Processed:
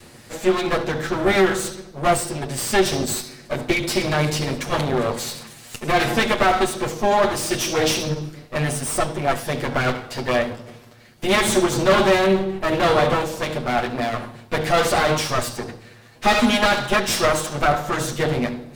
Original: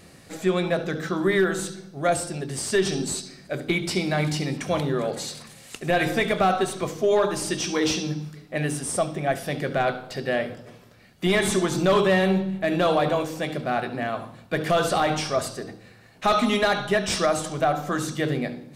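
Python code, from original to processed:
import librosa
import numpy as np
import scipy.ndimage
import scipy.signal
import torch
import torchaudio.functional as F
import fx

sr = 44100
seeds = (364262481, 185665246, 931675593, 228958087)

y = fx.lower_of_two(x, sr, delay_ms=8.4)
y = y * 10.0 ** (6.0 / 20.0)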